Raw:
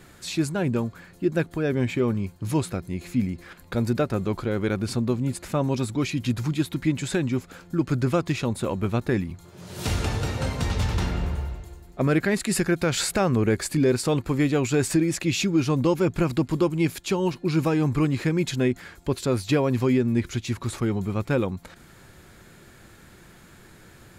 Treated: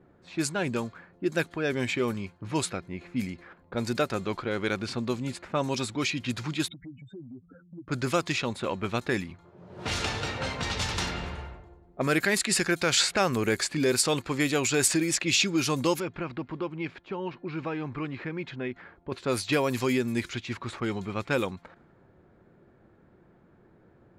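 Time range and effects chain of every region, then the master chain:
6.68–7.88 s: spectral contrast enhancement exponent 3.4 + compression, threshold -35 dBFS
16.00–19.12 s: low-pass 4.1 kHz + compression 1.5:1, threshold -34 dBFS
whole clip: level-controlled noise filter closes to 510 Hz, open at -17.5 dBFS; tilt EQ +3 dB/octave

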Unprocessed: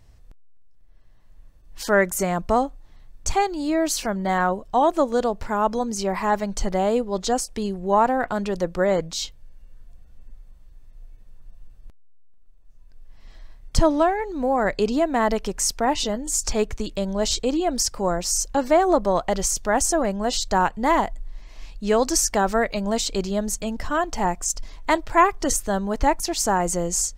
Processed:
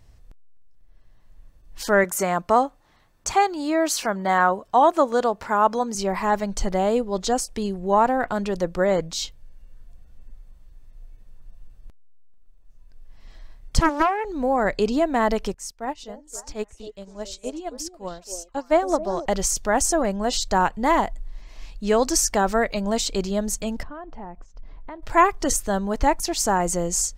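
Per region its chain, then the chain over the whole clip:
2.04–5.95 s: high-pass 210 Hz 6 dB/octave + peaking EQ 1.2 kHz +5 dB 1.5 oct
13.80–14.25 s: steep high-pass 300 Hz 72 dB/octave + loudspeaker Doppler distortion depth 0.55 ms
15.54–19.26 s: repeats whose band climbs or falls 273 ms, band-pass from 440 Hz, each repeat 1.4 oct, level -3 dB + upward expansion 2.5:1, over -28 dBFS
23.83–25.03 s: compression 3:1, threshold -34 dBFS + tape spacing loss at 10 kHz 43 dB
whole clip: none

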